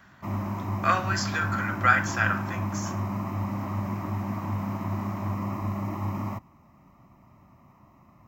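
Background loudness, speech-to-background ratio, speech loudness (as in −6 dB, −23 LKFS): −31.5 LKFS, 5.0 dB, −26.5 LKFS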